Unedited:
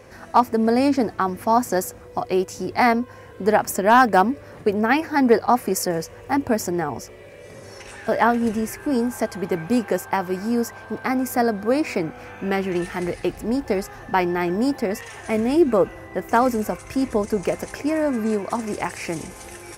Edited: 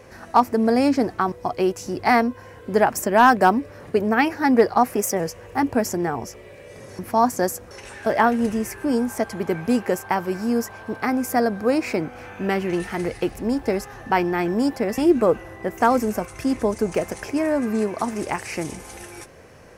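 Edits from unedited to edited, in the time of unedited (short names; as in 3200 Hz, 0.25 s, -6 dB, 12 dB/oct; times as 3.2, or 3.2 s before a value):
1.32–2.04 move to 7.73
5.65–5.94 speed 108%
15–15.49 cut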